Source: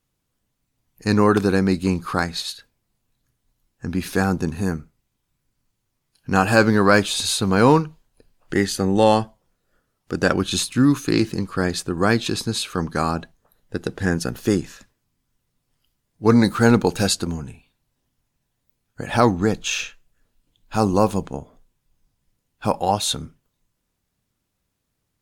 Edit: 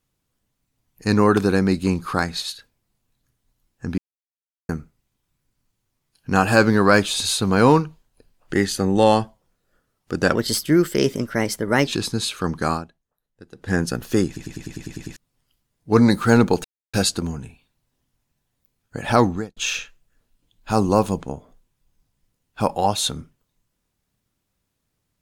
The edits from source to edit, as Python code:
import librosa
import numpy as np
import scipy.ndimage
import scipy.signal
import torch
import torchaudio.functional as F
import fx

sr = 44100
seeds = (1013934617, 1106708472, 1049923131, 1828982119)

y = fx.edit(x, sr, fx.silence(start_s=3.98, length_s=0.71),
    fx.speed_span(start_s=10.35, length_s=1.86, speed=1.22),
    fx.fade_down_up(start_s=13.06, length_s=0.99, db=-17.5, fade_s=0.19, curve='qua'),
    fx.stutter_over(start_s=14.6, slice_s=0.1, count=9),
    fx.insert_silence(at_s=16.98, length_s=0.29),
    fx.fade_out_span(start_s=19.36, length_s=0.25, curve='qua'), tone=tone)